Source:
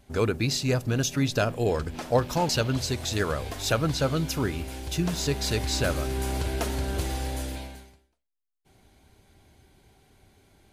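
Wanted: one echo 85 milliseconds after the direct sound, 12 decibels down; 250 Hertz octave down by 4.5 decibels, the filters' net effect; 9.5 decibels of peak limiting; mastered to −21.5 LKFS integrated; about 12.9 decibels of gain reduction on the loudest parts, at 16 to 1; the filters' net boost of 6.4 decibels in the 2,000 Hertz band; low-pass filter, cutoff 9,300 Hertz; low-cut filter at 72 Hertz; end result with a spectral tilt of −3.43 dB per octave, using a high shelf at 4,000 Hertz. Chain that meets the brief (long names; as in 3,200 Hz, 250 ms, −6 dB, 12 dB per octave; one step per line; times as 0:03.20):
high-pass filter 72 Hz
low-pass filter 9,300 Hz
parametric band 250 Hz −6.5 dB
parametric band 2,000 Hz +8 dB
high-shelf EQ 4,000 Hz +4 dB
downward compressor 16 to 1, threshold −30 dBFS
brickwall limiter −27 dBFS
single-tap delay 85 ms −12 dB
level +15 dB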